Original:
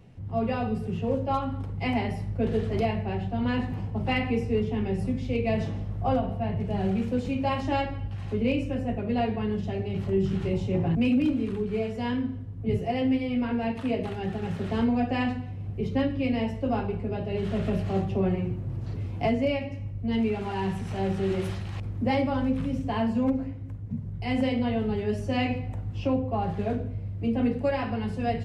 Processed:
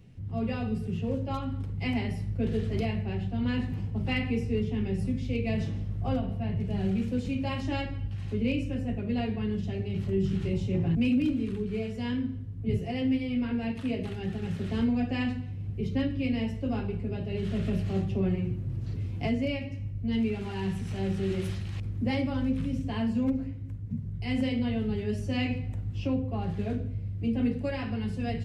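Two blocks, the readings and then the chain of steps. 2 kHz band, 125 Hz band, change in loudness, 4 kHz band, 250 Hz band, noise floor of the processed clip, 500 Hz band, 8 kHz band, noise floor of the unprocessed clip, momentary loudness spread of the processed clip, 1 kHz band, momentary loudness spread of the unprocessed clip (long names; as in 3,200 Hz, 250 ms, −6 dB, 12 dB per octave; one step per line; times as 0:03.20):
−3.0 dB, −0.5 dB, −2.5 dB, −1.5 dB, −2.0 dB, −36 dBFS, −6.0 dB, can't be measured, −36 dBFS, 6 LU, −9.5 dB, 6 LU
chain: parametric band 810 Hz −10 dB 1.8 octaves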